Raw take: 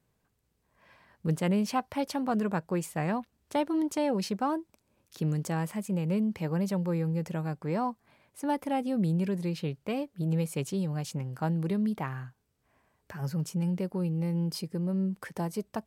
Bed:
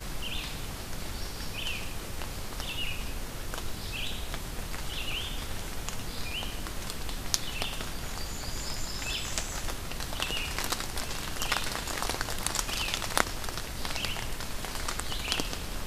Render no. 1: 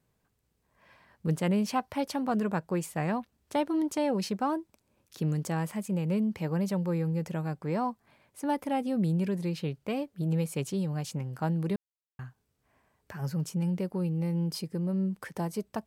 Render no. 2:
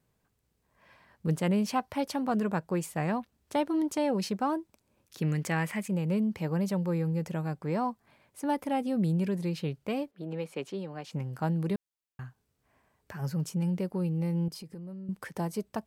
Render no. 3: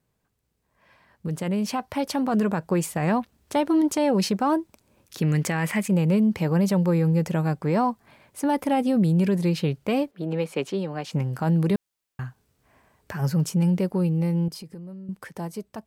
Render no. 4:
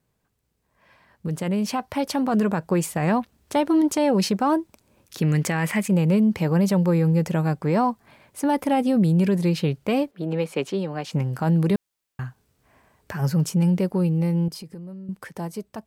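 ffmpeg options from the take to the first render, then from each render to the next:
-filter_complex "[0:a]asplit=3[s0][s1][s2];[s0]atrim=end=11.76,asetpts=PTS-STARTPTS,afade=t=out:st=11.756:d=0.004:c=hsin[s3];[s1]atrim=start=11.76:end=12.19,asetpts=PTS-STARTPTS,volume=0[s4];[s2]atrim=start=12.19,asetpts=PTS-STARTPTS,afade=t=in:d=0.004:c=hsin[s5];[s3][s4][s5]concat=n=3:v=0:a=1"
-filter_complex "[0:a]asettb=1/sr,asplit=3[s0][s1][s2];[s0]atrim=end=5.224[s3];[s1]atrim=start=5.22:end=5.88,asetpts=PTS-STARTPTS,afade=t=in:d=0.004:c=qsin,afade=t=out:st=0.656:d=0.004:c=qsin,equalizer=f=2100:w=1.4:g=12[s4];[s2]atrim=start=5.876[s5];[s3][s4]acrossfade=d=0.004:c1=hsin:c2=qsin[s6];[s6][s5]acrossfade=d=0.004:c1=qsin:c2=hsin,asettb=1/sr,asplit=3[s7][s8][s9];[s7]atrim=end=10.114[s10];[s8]atrim=start=10.11:end=11.13,asetpts=PTS-STARTPTS,afade=t=in:d=0.004:c=qsin,afade=t=out:st=1.016:d=0.004:c=qsin,acrossover=split=230 4100:gain=0.0794 1 0.158[s11][s12][s13];[s11][s12][s13]amix=inputs=3:normalize=0[s14];[s9]atrim=start=11.126[s15];[s10][s14]acrossfade=d=0.004:c1=hsin:c2=qsin[s16];[s16][s15]acrossfade=d=0.004:c1=qsin:c2=hsin,asettb=1/sr,asplit=3[s17][s18][s19];[s17]atrim=end=14.484[s20];[s18]atrim=start=14.48:end=15.09,asetpts=PTS-STARTPTS,afade=t=in:d=0.004:c=qsin,afade=t=out:st=0.606:d=0.004:c=qsin,acompressor=threshold=0.0112:ratio=12:attack=3.2:release=140:knee=1:detection=peak[s21];[s19]atrim=start=15.086[s22];[s20][s21]acrossfade=d=0.004:c1=hsin:c2=qsin[s23];[s23][s22]acrossfade=d=0.004:c1=qsin:c2=hsin"
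-af "alimiter=limit=0.0668:level=0:latency=1:release=32,dynaudnorm=f=280:g=13:m=2.82"
-af "volume=1.19"

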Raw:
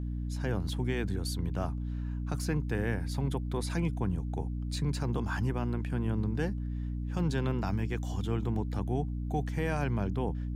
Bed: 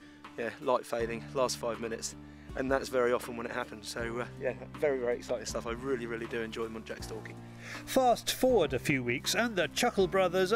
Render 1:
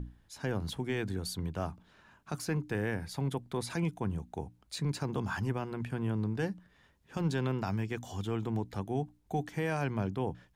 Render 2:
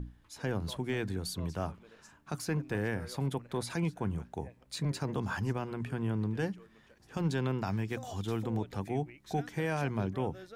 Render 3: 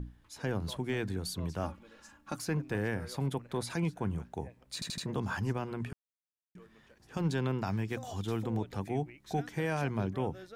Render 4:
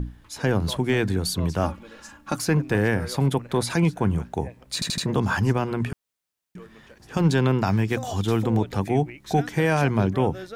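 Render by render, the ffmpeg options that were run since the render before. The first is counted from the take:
-af "bandreject=f=60:t=h:w=6,bandreject=f=120:t=h:w=6,bandreject=f=180:t=h:w=6,bandreject=f=240:t=h:w=6,bandreject=f=300:t=h:w=6"
-filter_complex "[1:a]volume=0.0841[s0];[0:a][s0]amix=inputs=2:normalize=0"
-filter_complex "[0:a]asettb=1/sr,asplit=3[s0][s1][s2];[s0]atrim=end=1.634[s3];[s1]atrim=start=1.63:end=2.36,asetpts=PTS-STARTPTS,afade=t=in:d=0.004:c=qsin,afade=t=out:st=0.726:d=0.004:c=qsin,aecho=1:1:3.6:0.65,atrim=end_sample=32193[s4];[s2]atrim=start=2.356[s5];[s3][s4]acrossfade=d=0.004:c1=hsin:c2=qsin[s6];[s6][s5]acrossfade=d=0.004:c1=qsin:c2=hsin,asplit=7[s7][s8][s9][s10][s11][s12][s13];[s7]atrim=end=4.822[s14];[s8]atrim=start=4.738:end=4.822[s15];[s9]atrim=start=4.738:end=4.822[s16];[s10]atrim=start=4.738:end=4.822[s17];[s11]atrim=start=5.058:end=5.93,asetpts=PTS-STARTPTS,afade=t=out:st=0.868:d=0.004:c=hsin[s18];[s12]atrim=start=5.93:end=6.55,asetpts=PTS-STARTPTS,volume=0[s19];[s13]atrim=start=6.55,asetpts=PTS-STARTPTS,afade=t=in:d=0.004:c=hsin[s20];[s14][s15]acrossfade=d=0.004:c1=hsin:c2=hsin[s21];[s21][s16]acrossfade=d=0.004:c1=hsin:c2=hsin[s22];[s22][s17]acrossfade=d=0.004:c1=hsin:c2=hsin[s23];[s18][s19][s20]concat=n=3:v=0:a=1[s24];[s23][s24]acrossfade=d=0.004:c1=hsin:c2=hsin"
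-af "volume=3.76"

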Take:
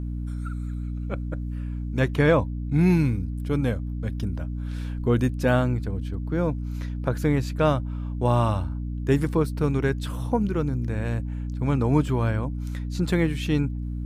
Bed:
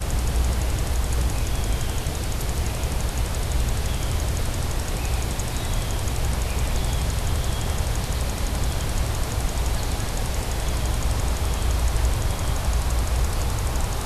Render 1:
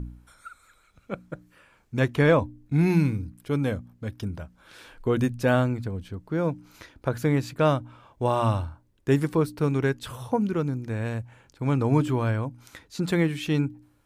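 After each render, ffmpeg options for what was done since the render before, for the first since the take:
-af "bandreject=f=60:t=h:w=4,bandreject=f=120:t=h:w=4,bandreject=f=180:t=h:w=4,bandreject=f=240:t=h:w=4,bandreject=f=300:t=h:w=4"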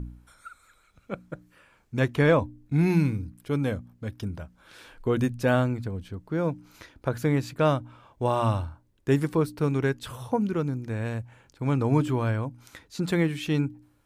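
-af "volume=0.891"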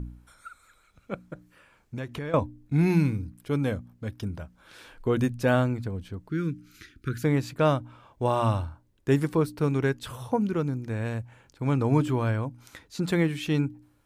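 -filter_complex "[0:a]asettb=1/sr,asplit=3[s0][s1][s2];[s0]atrim=end=1.214[s3];[s1]atrim=start=1.21:end=2.34,asetpts=PTS-STARTPTS,afade=t=in:d=0.004:c=qsin,afade=t=out:st=1.126:d=0.004:c=qsin,acompressor=threshold=0.0282:ratio=6:attack=3.2:release=140:knee=1:detection=peak[s4];[s2]atrim=start=2.336[s5];[s3][s4]acrossfade=d=0.004:c1=hsin:c2=qsin[s6];[s6][s5]acrossfade=d=0.004:c1=qsin:c2=hsin,asettb=1/sr,asplit=3[s7][s8][s9];[s7]atrim=end=6.294[s10];[s8]atrim=start=6.29:end=7.24,asetpts=PTS-STARTPTS,afade=t=in:d=0.004:c=qsin,afade=t=out:st=0.946:d=0.004:c=qsin,asuperstop=centerf=720:order=8:qfactor=0.78[s11];[s9]atrim=start=7.236[s12];[s10][s11]acrossfade=d=0.004:c1=hsin:c2=qsin[s13];[s13][s12]acrossfade=d=0.004:c1=qsin:c2=hsin"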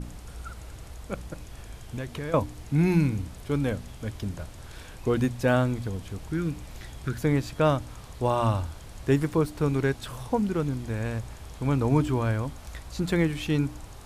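-filter_complex "[1:a]volume=0.119[s0];[0:a][s0]amix=inputs=2:normalize=0"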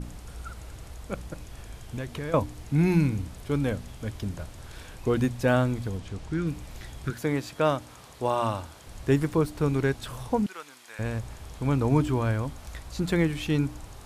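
-filter_complex "[0:a]asettb=1/sr,asplit=3[s0][s1][s2];[s0]atrim=end=5.984[s3];[s1]atrim=start=5.98:end=6.47,asetpts=PTS-STARTPTS,afade=t=in:d=0.004:c=qsin,afade=t=out:st=0.486:d=0.004:c=qsin,lowpass=8000[s4];[s2]atrim=start=6.466[s5];[s3][s4]acrossfade=d=0.004:c1=hsin:c2=qsin[s6];[s6][s5]acrossfade=d=0.004:c1=qsin:c2=hsin,asettb=1/sr,asplit=3[s7][s8][s9];[s7]atrim=end=7.104[s10];[s8]atrim=start=7.1:end=8.87,asetpts=PTS-STARTPTS,afade=t=in:d=0.004:c=qsin,afade=t=out:st=1.766:d=0.004:c=qsin,highpass=f=260:p=1[s11];[s9]atrim=start=8.866[s12];[s10][s11]acrossfade=d=0.004:c1=hsin:c2=qsin[s13];[s13][s12]acrossfade=d=0.004:c1=qsin:c2=hsin,asettb=1/sr,asplit=3[s14][s15][s16];[s14]atrim=end=10.464[s17];[s15]atrim=start=10.46:end=10.99,asetpts=PTS-STARTPTS,afade=t=in:d=0.004:c=qsin,afade=t=out:st=0.526:d=0.004:c=qsin,highpass=1200[s18];[s16]atrim=start=10.986[s19];[s17][s18]acrossfade=d=0.004:c1=hsin:c2=qsin[s20];[s20][s19]acrossfade=d=0.004:c1=qsin:c2=hsin"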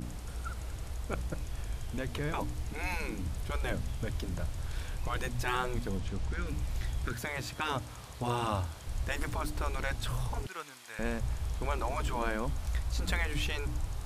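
-af "afftfilt=real='re*lt(hypot(re,im),0.2)':imag='im*lt(hypot(re,im),0.2)':win_size=1024:overlap=0.75,asubboost=boost=2.5:cutoff=140"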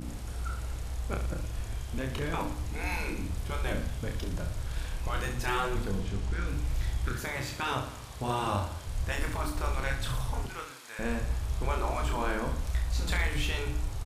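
-af "aecho=1:1:30|67.5|114.4|173|246.2:0.631|0.398|0.251|0.158|0.1"

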